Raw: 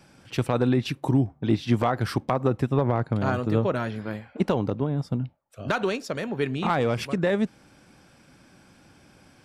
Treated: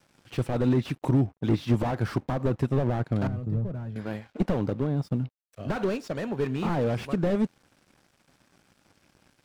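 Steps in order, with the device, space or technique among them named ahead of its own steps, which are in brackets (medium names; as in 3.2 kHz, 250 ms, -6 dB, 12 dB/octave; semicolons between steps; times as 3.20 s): early transistor amplifier (crossover distortion -54 dBFS; slew-rate limiter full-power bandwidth 34 Hz); 3.27–3.96 s: FFT filter 170 Hz 0 dB, 260 Hz -10 dB, 2.3 kHz -19 dB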